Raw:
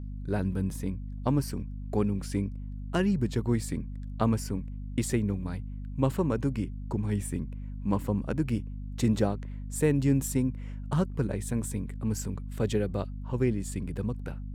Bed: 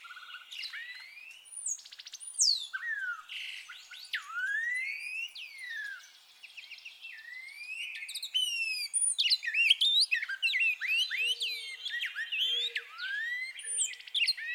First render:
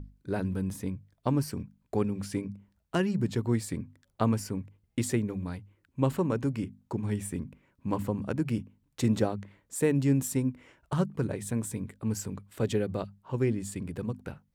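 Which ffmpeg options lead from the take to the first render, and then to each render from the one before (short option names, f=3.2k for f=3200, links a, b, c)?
-af "bandreject=f=50:t=h:w=6,bandreject=f=100:t=h:w=6,bandreject=f=150:t=h:w=6,bandreject=f=200:t=h:w=6,bandreject=f=250:t=h:w=6"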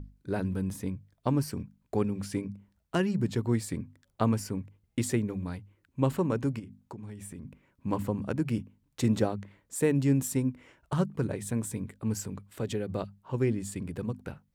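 -filter_complex "[0:a]asplit=3[a][b][c];[a]afade=t=out:st=6.58:d=0.02[d];[b]acompressor=threshold=-39dB:ratio=6:attack=3.2:release=140:knee=1:detection=peak,afade=t=in:st=6.58:d=0.02,afade=t=out:st=7.43:d=0.02[e];[c]afade=t=in:st=7.43:d=0.02[f];[d][e][f]amix=inputs=3:normalize=0,asettb=1/sr,asplit=3[g][h][i];[g]atrim=end=12.214[j];[h]atrim=start=12.21:end=12.9,asetpts=PTS-STARTPTS,afade=t=in:d=0.004:c=qsin,afade=t=out:st=0.686:d=0.004:c=qsin,acompressor=threshold=-34dB:ratio=1.5:attack=3.2:release=140:knee=1:detection=peak[k];[i]atrim=start=12.896[l];[j][k]acrossfade=d=0.004:c1=hsin:c2=qsin[m];[m][l]acrossfade=d=0.004:c1=qsin:c2=hsin"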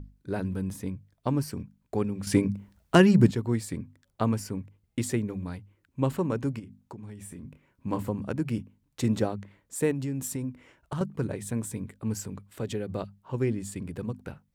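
-filter_complex "[0:a]asettb=1/sr,asplit=3[a][b][c];[a]atrim=end=7.234[d];[b]atrim=start=7.23:end=8.09,asetpts=PTS-STARTPTS,afade=t=in:d=0.004:c=qsin,afade=t=out:st=0.856:d=0.004:c=qsin,asplit=2[e][f];[f]adelay=27,volume=-9dB[g];[e][g]amix=inputs=2:normalize=0,atrim=end_sample=37926[h];[c]atrim=start=8.086[i];[d][h]acrossfade=d=0.004:c1=hsin:c2=qsin[j];[j][i]acrossfade=d=0.004:c1=qsin:c2=hsin,asettb=1/sr,asplit=3[k][l][m];[k]atrim=end=9.914[n];[l]atrim=start=9.91:end=11.01,asetpts=PTS-STARTPTS,afade=t=in:d=0.004:c=qsin,afade=t=out:st=1.096:d=0.004:c=qsin,acompressor=threshold=-28dB:ratio=6:attack=3.2:release=140:knee=1:detection=peak[o];[m]atrim=start=11.006[p];[n][o]acrossfade=d=0.004:c1=hsin:c2=qsin[q];[q][p]acrossfade=d=0.004:c1=qsin:c2=hsin,asplit=3[r][s][t];[r]atrim=end=2.272[u];[s]atrim=start=2.268:end=3.312,asetpts=PTS-STARTPTS,volume=10dB[v];[t]atrim=start=3.308[w];[u][v]acrossfade=d=0.004:c1=hsin:c2=hsin[x];[x][w]acrossfade=d=0.004:c1=hsin:c2=hsin"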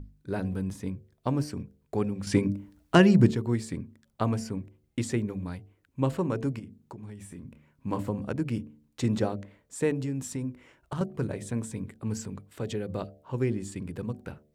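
-filter_complex "[0:a]bandreject=f=74.41:t=h:w=4,bandreject=f=148.82:t=h:w=4,bandreject=f=223.23:t=h:w=4,bandreject=f=297.64:t=h:w=4,bandreject=f=372.05:t=h:w=4,bandreject=f=446.46:t=h:w=4,bandreject=f=520.87:t=h:w=4,bandreject=f=595.28:t=h:w=4,bandreject=f=669.69:t=h:w=4,bandreject=f=744.1:t=h:w=4,acrossover=split=8500[a][b];[b]acompressor=threshold=-59dB:ratio=4:attack=1:release=60[c];[a][c]amix=inputs=2:normalize=0"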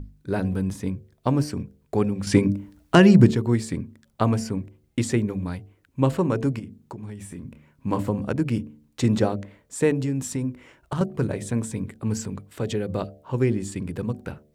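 -af "volume=6dB,alimiter=limit=-3dB:level=0:latency=1"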